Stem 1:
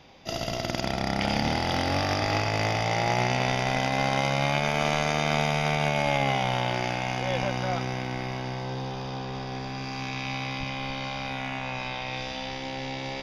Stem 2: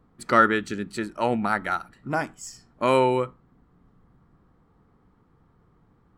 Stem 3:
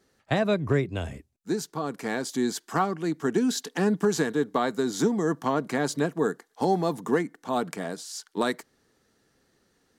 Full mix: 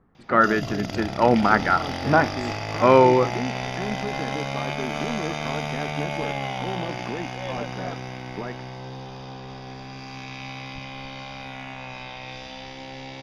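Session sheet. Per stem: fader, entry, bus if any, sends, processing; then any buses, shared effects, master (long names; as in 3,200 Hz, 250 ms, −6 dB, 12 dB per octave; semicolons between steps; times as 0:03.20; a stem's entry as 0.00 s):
−4.0 dB, 0.15 s, no send, no processing
−1.5 dB, 0.00 s, no send, low-pass filter 2,200 Hz 12 dB per octave; automatic gain control gain up to 11.5 dB
−3.0 dB, 0.00 s, no send, low-pass filter 2,000 Hz 24 dB per octave; brickwall limiter −21 dBFS, peak gain reduction 8.5 dB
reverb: not used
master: no processing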